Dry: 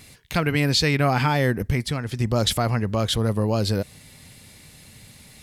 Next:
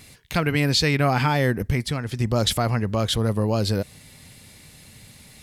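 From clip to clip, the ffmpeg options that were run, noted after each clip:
ffmpeg -i in.wav -af anull out.wav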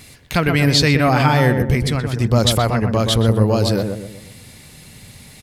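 ffmpeg -i in.wav -filter_complex "[0:a]asplit=2[link_01][link_02];[link_02]adelay=124,lowpass=frequency=1200:poles=1,volume=-4.5dB,asplit=2[link_03][link_04];[link_04]adelay=124,lowpass=frequency=1200:poles=1,volume=0.45,asplit=2[link_05][link_06];[link_06]adelay=124,lowpass=frequency=1200:poles=1,volume=0.45,asplit=2[link_07][link_08];[link_08]adelay=124,lowpass=frequency=1200:poles=1,volume=0.45,asplit=2[link_09][link_10];[link_10]adelay=124,lowpass=frequency=1200:poles=1,volume=0.45,asplit=2[link_11][link_12];[link_12]adelay=124,lowpass=frequency=1200:poles=1,volume=0.45[link_13];[link_01][link_03][link_05][link_07][link_09][link_11][link_13]amix=inputs=7:normalize=0,volume=5dB" out.wav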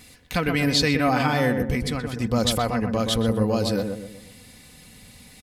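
ffmpeg -i in.wav -af "aecho=1:1:4:0.46,volume=-6.5dB" out.wav

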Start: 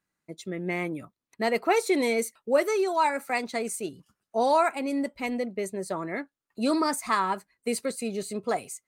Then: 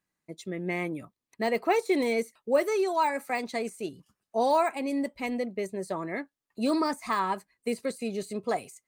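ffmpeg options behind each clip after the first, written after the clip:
ffmpeg -i in.wav -af "bandreject=frequency=1400:width=9.5,deesser=0.9,volume=-1dB" out.wav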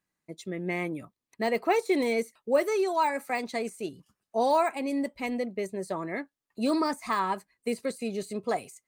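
ffmpeg -i in.wav -af anull out.wav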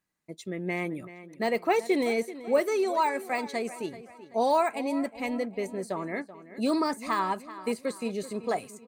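ffmpeg -i in.wav -filter_complex "[0:a]asplit=2[link_01][link_02];[link_02]adelay=383,lowpass=frequency=4900:poles=1,volume=-15dB,asplit=2[link_03][link_04];[link_04]adelay=383,lowpass=frequency=4900:poles=1,volume=0.42,asplit=2[link_05][link_06];[link_06]adelay=383,lowpass=frequency=4900:poles=1,volume=0.42,asplit=2[link_07][link_08];[link_08]adelay=383,lowpass=frequency=4900:poles=1,volume=0.42[link_09];[link_01][link_03][link_05][link_07][link_09]amix=inputs=5:normalize=0" out.wav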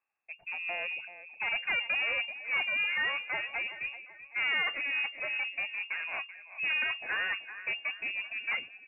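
ffmpeg -i in.wav -af "aeval=exprs='(tanh(22.4*val(0)+0.5)-tanh(0.5))/22.4':channel_layout=same,lowpass=frequency=2400:width_type=q:width=0.5098,lowpass=frequency=2400:width_type=q:width=0.6013,lowpass=frequency=2400:width_type=q:width=0.9,lowpass=frequency=2400:width_type=q:width=2.563,afreqshift=-2800" out.wav

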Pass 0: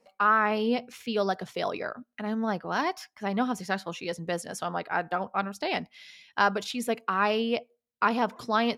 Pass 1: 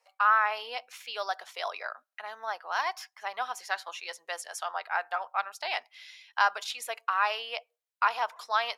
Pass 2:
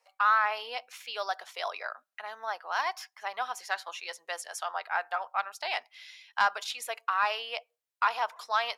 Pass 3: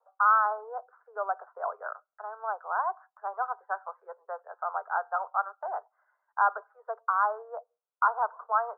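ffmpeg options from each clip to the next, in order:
ffmpeg -i in.wav -af "highpass=frequency=740:width=0.5412,highpass=frequency=740:width=1.3066" out.wav
ffmpeg -i in.wav -af "asoftclip=type=tanh:threshold=-12dB" out.wav
ffmpeg -i in.wav -af "asuperpass=centerf=760:order=20:qfactor=0.68,volume=2.5dB" out.wav

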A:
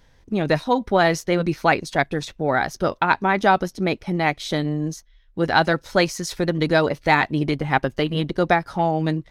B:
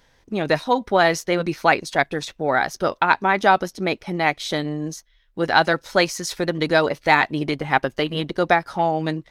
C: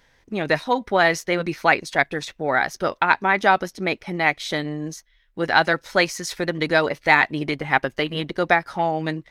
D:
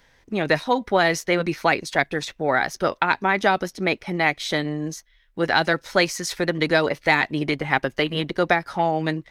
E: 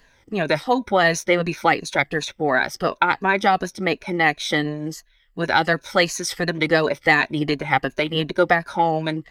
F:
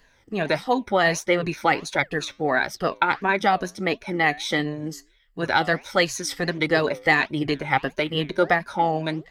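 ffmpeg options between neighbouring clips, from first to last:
ffmpeg -i in.wav -af "lowshelf=frequency=240:gain=-9.5,volume=2dB" out.wav
ffmpeg -i in.wav -af "equalizer=frequency=2000:width=1.8:gain=5,volume=-2dB" out.wav
ffmpeg -i in.wav -filter_complex "[0:a]acrossover=split=500|3000[link_01][link_02][link_03];[link_02]acompressor=threshold=-19dB:ratio=6[link_04];[link_01][link_04][link_03]amix=inputs=3:normalize=0,volume=1.5dB" out.wav
ffmpeg -i in.wav -af "afftfilt=real='re*pow(10,11/40*sin(2*PI*(1.5*log(max(b,1)*sr/1024/100)/log(2)-(-2.8)*(pts-256)/sr)))':imag='im*pow(10,11/40*sin(2*PI*(1.5*log(max(b,1)*sr/1024/100)/log(2)-(-2.8)*(pts-256)/sr)))':win_size=1024:overlap=0.75" out.wav
ffmpeg -i in.wav -af "flanger=delay=2.1:depth=6.8:regen=-87:speed=1.5:shape=sinusoidal,volume=2dB" out.wav

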